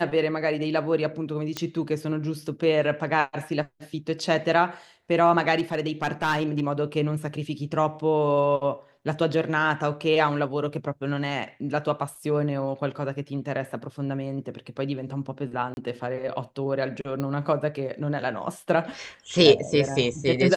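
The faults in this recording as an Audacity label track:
1.570000	1.570000	pop -12 dBFS
5.550000	6.670000	clipped -18 dBFS
15.740000	15.770000	gap 31 ms
17.200000	17.200000	pop -17 dBFS

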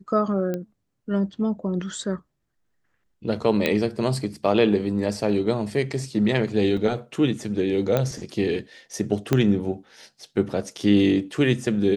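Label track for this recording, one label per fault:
0.540000	0.540000	pop -16 dBFS
3.660000	3.660000	pop -8 dBFS
6.770000	6.770000	gap 4.3 ms
7.970000	7.970000	pop -10 dBFS
9.330000	9.330000	pop -7 dBFS

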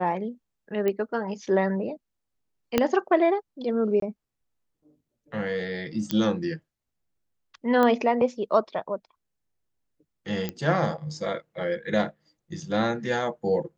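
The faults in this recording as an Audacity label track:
0.880000	0.880000	pop -15 dBFS
2.780000	2.780000	pop -6 dBFS
4.000000	4.020000	gap 23 ms
6.110000	6.110000	pop -12 dBFS
7.830000	7.830000	pop -12 dBFS
10.490000	10.490000	pop -15 dBFS

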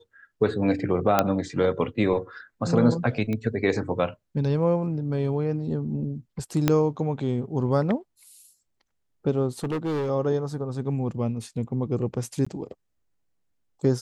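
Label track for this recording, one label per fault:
1.190000	1.190000	pop -5 dBFS
3.330000	3.330000	pop -18 dBFS
6.680000	6.680000	pop -6 dBFS
9.630000	10.100000	clipped -24 dBFS
12.450000	12.460000	gap 15 ms

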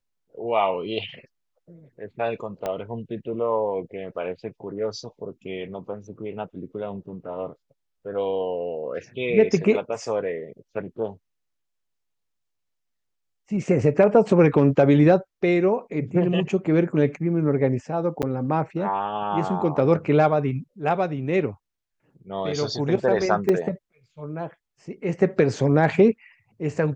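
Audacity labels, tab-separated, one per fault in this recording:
2.660000	2.660000	pop -15 dBFS
18.220000	18.230000	gap 8.3 ms
23.490000	23.490000	gap 2.7 ms

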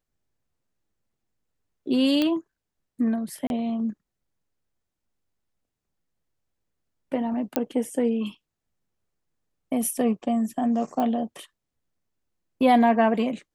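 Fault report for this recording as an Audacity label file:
2.220000	2.220000	pop -12 dBFS
3.470000	3.500000	gap 31 ms
7.560000	7.560000	pop -8 dBFS
11.000000	11.000000	pop -16 dBFS

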